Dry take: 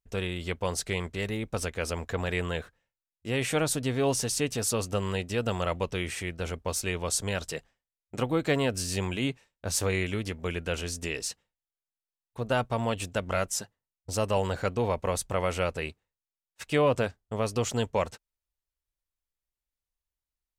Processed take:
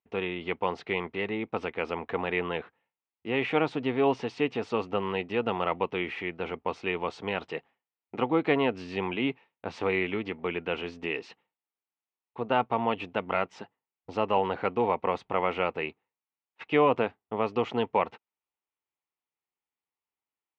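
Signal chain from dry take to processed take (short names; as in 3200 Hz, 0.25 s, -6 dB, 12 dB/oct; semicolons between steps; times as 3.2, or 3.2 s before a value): speaker cabinet 260–2700 Hz, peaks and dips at 580 Hz -8 dB, 840 Hz +4 dB, 1600 Hz -8 dB; gain +4.5 dB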